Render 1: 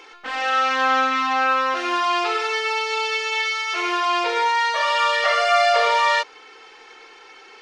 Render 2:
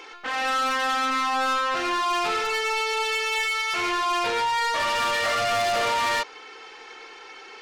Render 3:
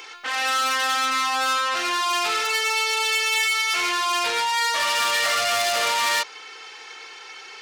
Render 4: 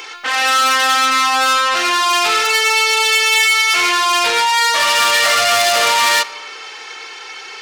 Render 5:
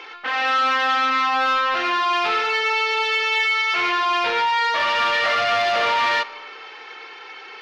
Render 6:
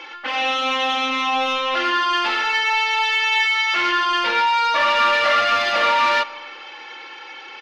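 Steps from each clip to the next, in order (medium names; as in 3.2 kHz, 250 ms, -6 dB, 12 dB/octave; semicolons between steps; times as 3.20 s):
saturation -23.5 dBFS, distortion -8 dB; trim +2 dB
tilt EQ +3 dB/octave
reverberation RT60 1.8 s, pre-delay 8 ms, DRR 20 dB; trim +8.5 dB
distance through air 280 m; trim -3 dB
comb 3.5 ms, depth 80%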